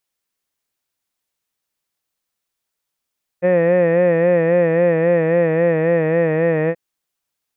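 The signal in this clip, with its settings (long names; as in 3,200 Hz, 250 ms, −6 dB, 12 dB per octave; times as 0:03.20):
vowel by formant synthesis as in head, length 3.33 s, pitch 175 Hz, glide −1.5 semitones, vibrato 3.7 Hz, vibrato depth 0.75 semitones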